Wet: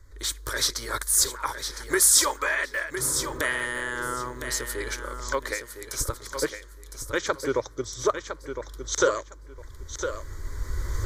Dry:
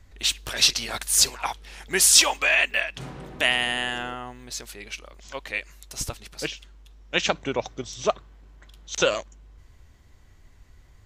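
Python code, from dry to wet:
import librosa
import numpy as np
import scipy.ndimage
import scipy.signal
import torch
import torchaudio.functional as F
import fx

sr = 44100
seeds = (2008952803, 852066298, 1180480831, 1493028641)

p1 = fx.recorder_agc(x, sr, target_db=-13.0, rise_db_per_s=13.0, max_gain_db=30)
p2 = fx.dynamic_eq(p1, sr, hz=5200.0, q=1.3, threshold_db=-36.0, ratio=4.0, max_db=-5)
p3 = fx.fixed_phaser(p2, sr, hz=730.0, stages=6)
p4 = p3 + fx.echo_feedback(p3, sr, ms=1009, feedback_pct=19, wet_db=-8.5, dry=0)
y = p4 * librosa.db_to_amplitude(2.0)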